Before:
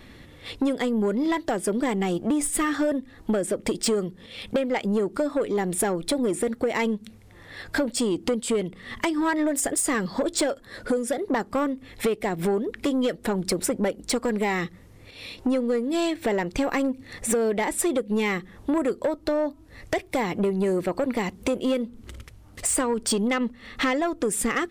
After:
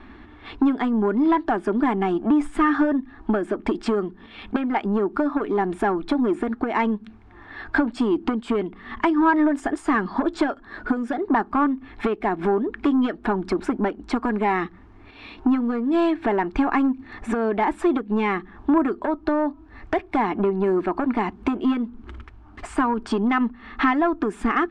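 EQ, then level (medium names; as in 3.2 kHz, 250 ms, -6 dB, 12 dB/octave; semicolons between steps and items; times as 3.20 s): resonant low-pass 1.9 kHz, resonance Q 12; static phaser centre 520 Hz, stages 6; +5.5 dB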